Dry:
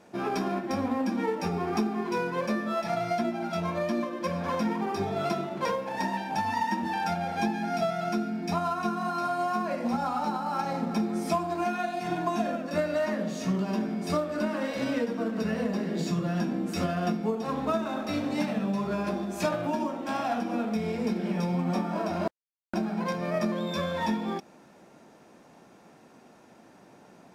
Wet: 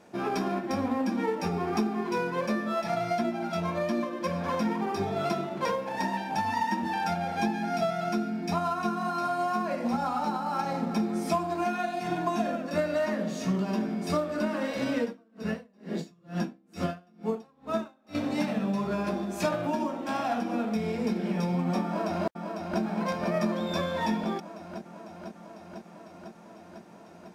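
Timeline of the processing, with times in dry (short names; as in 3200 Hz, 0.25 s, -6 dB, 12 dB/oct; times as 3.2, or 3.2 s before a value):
15.04–18.15 dB-linear tremolo 2.2 Hz, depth 35 dB
21.85–22.81 echo throw 0.5 s, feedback 80%, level -5.5 dB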